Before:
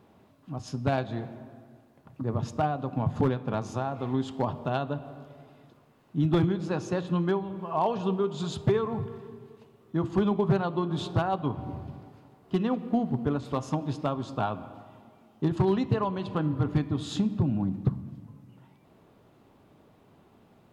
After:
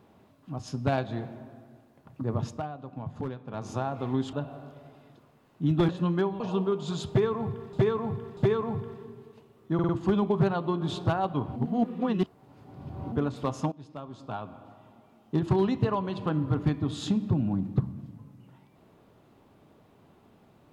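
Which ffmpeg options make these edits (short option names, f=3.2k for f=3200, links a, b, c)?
-filter_complex "[0:a]asplit=14[a][b][c][d][e][f][g][h][i][j][k][l][m][n];[a]atrim=end=2.64,asetpts=PTS-STARTPTS,afade=t=out:st=2.45:d=0.19:silence=0.334965[o];[b]atrim=start=2.64:end=3.52,asetpts=PTS-STARTPTS,volume=-9.5dB[p];[c]atrim=start=3.52:end=4.332,asetpts=PTS-STARTPTS,afade=t=in:d=0.19:silence=0.334965[q];[d]atrim=start=4.868:end=6.432[r];[e]atrim=start=6.988:end=7.502[s];[f]atrim=start=7.918:end=9.252[t];[g]atrim=start=8.608:end=9.252[u];[h]atrim=start=8.608:end=10.032[v];[i]atrim=start=9.978:end=10.032[w];[j]atrim=start=9.978:end=10.032[x];[k]atrim=start=9.978:end=11.652[y];[l]atrim=start=11.648:end=13.212,asetpts=PTS-STARTPTS,areverse[z];[m]atrim=start=13.208:end=13.81,asetpts=PTS-STARTPTS,afade=t=out:st=0.598:d=0.004:c=hsin:silence=0.125893[aa];[n]atrim=start=13.81,asetpts=PTS-STARTPTS,afade=t=in:d=1.72:silence=0.125893[ab];[o][p][q]concat=n=3:v=0:a=1[ac];[ac][r]acrossfade=d=0.004:c1=hsin:c2=hsin[ad];[ad][s]acrossfade=d=0.004:c1=hsin:c2=hsin[ae];[ae][t]acrossfade=d=0.004:c1=hsin:c2=hsin[af];[af][u]acrossfade=d=0.004:c1=hsin:c2=hsin[ag];[ag][v]acrossfade=d=0.004:c1=hsin:c2=hsin[ah];[ah][w]acrossfade=d=0.004:c1=hsin:c2=hsin[ai];[ai][x]acrossfade=d=0.004:c1=hsin:c2=hsin[aj];[aj][y]acrossfade=d=0.004:c1=hsin:c2=hsin[ak];[ak][z]acrossfade=d=0.004:c1=hsin:c2=hsin[al];[aa][ab]concat=n=2:v=0:a=1[am];[al][am]acrossfade=d=0.004:c1=hsin:c2=hsin"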